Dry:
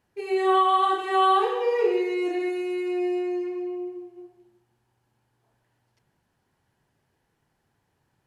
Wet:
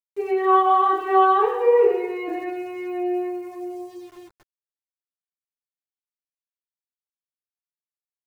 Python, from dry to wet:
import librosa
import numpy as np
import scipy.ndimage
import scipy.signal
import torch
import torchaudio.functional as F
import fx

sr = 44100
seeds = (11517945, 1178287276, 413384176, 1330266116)

y = scipy.signal.sosfilt(scipy.signal.butter(2, 1600.0, 'lowpass', fs=sr, output='sos'), x)
y = np.where(np.abs(y) >= 10.0 ** (-49.5 / 20.0), y, 0.0)
y = fx.chorus_voices(y, sr, voices=6, hz=0.36, base_ms=11, depth_ms=1.7, mix_pct=40)
y = F.gain(torch.from_numpy(y), 8.0).numpy()